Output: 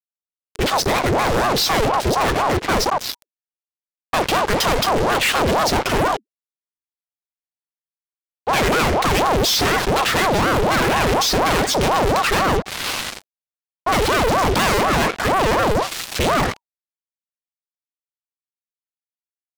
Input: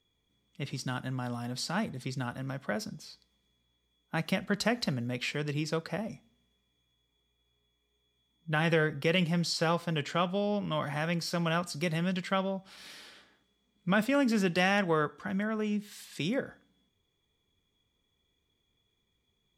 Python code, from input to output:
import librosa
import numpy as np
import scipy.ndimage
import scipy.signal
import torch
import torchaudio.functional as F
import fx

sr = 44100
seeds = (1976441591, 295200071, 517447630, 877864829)

y = fx.air_absorb(x, sr, metres=110.0)
y = fx.fuzz(y, sr, gain_db=53.0, gate_db=-52.0)
y = fx.ring_lfo(y, sr, carrier_hz=590.0, swing_pct=65, hz=4.1)